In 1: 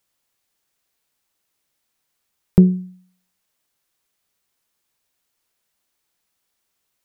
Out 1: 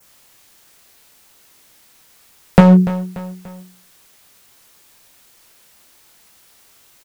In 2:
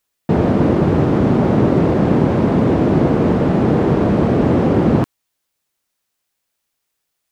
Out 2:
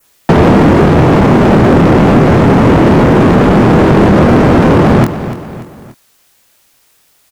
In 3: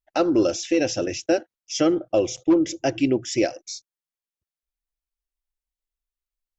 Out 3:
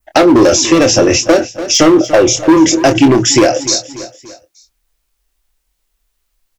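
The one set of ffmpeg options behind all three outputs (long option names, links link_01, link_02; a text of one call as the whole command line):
ffmpeg -i in.wav -filter_complex "[0:a]adynamicequalizer=threshold=0.00447:dfrequency=3700:dqfactor=1.6:tfrequency=3700:tqfactor=1.6:attack=5:release=100:ratio=0.375:range=3:mode=cutabove:tftype=bell,acrossover=split=260|3000[link_01][link_02][link_03];[link_02]acompressor=threshold=-15dB:ratio=6[link_04];[link_01][link_04][link_03]amix=inputs=3:normalize=0,volume=20.5dB,asoftclip=hard,volume=-20.5dB,asplit=2[link_05][link_06];[link_06]adelay=25,volume=-8.5dB[link_07];[link_05][link_07]amix=inputs=2:normalize=0,asplit=2[link_08][link_09];[link_09]aecho=0:1:291|582|873:0.106|0.0477|0.0214[link_10];[link_08][link_10]amix=inputs=2:normalize=0,alimiter=level_in=23.5dB:limit=-1dB:release=50:level=0:latency=1,volume=-1dB" out.wav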